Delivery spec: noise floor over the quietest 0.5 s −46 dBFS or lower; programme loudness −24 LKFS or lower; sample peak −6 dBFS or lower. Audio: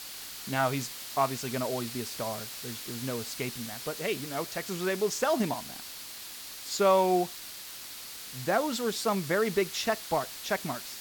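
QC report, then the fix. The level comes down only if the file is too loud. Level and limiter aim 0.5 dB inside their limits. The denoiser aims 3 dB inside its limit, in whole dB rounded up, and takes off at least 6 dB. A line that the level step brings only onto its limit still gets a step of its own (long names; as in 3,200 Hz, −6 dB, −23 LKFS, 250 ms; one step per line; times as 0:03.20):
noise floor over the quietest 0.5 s −43 dBFS: out of spec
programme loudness −31.0 LKFS: in spec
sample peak −12.0 dBFS: in spec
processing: broadband denoise 6 dB, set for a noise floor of −43 dBFS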